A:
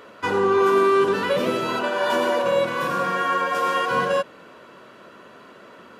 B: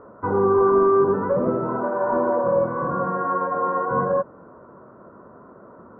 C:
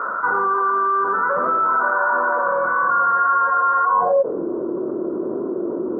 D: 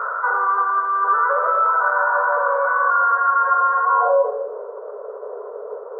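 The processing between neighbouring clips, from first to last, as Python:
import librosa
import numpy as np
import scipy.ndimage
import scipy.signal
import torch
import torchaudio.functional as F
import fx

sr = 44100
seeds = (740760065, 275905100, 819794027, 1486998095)

y1 = scipy.signal.sosfilt(scipy.signal.butter(6, 1300.0, 'lowpass', fs=sr, output='sos'), x)
y1 = fx.low_shelf(y1, sr, hz=130.0, db=12.0)
y2 = fx.rider(y1, sr, range_db=10, speed_s=0.5)
y2 = fx.filter_sweep_bandpass(y2, sr, from_hz=1400.0, to_hz=350.0, start_s=3.82, end_s=4.38, q=6.2)
y2 = fx.env_flatten(y2, sr, amount_pct=70)
y2 = F.gain(torch.from_numpy(y2), 6.5).numpy()
y3 = fx.brickwall_highpass(y2, sr, low_hz=410.0)
y3 = fx.rev_gated(y3, sr, seeds[0], gate_ms=270, shape='rising', drr_db=8.5)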